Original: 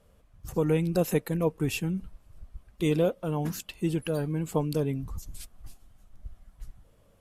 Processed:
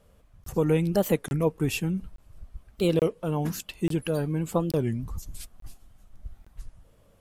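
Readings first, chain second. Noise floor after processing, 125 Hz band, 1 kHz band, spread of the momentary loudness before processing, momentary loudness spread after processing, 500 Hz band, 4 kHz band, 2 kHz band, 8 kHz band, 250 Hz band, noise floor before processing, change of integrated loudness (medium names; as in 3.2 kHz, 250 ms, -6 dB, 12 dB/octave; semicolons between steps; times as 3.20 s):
-60 dBFS, +1.5 dB, +2.0 dB, 15 LU, 12 LU, +2.0 dB, +2.5 dB, +1.5 dB, +1.5 dB, +1.5 dB, -62 dBFS, +1.5 dB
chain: crackling interface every 0.86 s, samples 1024, zero, from 0.44 s; warped record 33 1/3 rpm, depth 250 cents; trim +2 dB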